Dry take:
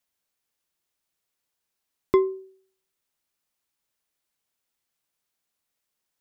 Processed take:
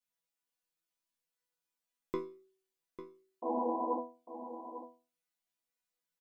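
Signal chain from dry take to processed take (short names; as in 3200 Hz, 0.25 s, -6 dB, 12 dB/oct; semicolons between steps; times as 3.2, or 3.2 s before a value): painted sound noise, 3.42–4, 210–1100 Hz -25 dBFS; resonator bank E3 fifth, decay 0.35 s; echo 0.848 s -11.5 dB; gain +6 dB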